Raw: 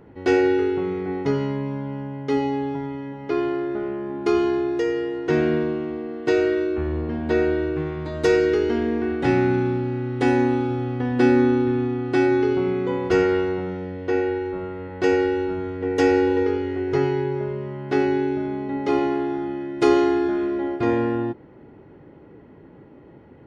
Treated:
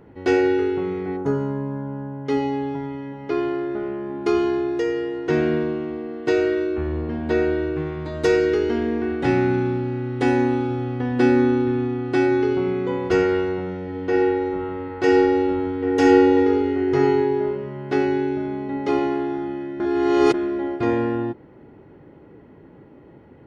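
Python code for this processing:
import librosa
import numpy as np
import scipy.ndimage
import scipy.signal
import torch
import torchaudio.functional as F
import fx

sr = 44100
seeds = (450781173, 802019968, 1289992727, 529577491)

y = fx.spec_box(x, sr, start_s=1.17, length_s=1.09, low_hz=1800.0, high_hz=5800.0, gain_db=-13)
y = fx.reverb_throw(y, sr, start_s=13.83, length_s=3.63, rt60_s=0.84, drr_db=1.5)
y = fx.edit(y, sr, fx.reverse_span(start_s=19.8, length_s=0.54), tone=tone)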